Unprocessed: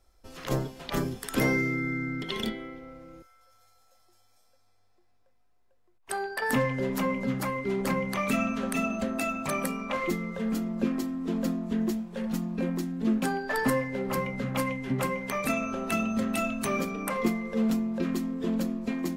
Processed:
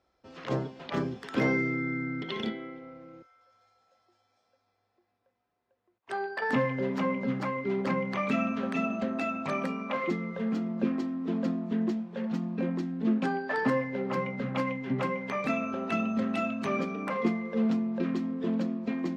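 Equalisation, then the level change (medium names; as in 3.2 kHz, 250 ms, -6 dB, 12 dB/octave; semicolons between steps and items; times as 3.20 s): high-pass 130 Hz 12 dB/octave; distance through air 180 m; 0.0 dB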